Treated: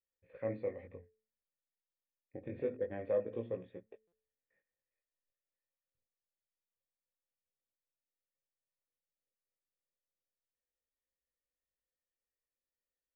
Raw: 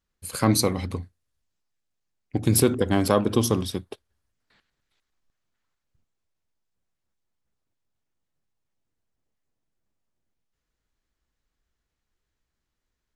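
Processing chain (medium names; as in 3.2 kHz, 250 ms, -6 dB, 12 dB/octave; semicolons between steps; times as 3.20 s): cascade formant filter e; de-hum 219.3 Hz, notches 2; chorus 0.27 Hz, delay 17 ms, depth 5.7 ms; buffer glitch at 4.07 s, samples 256, times 8; trim -2.5 dB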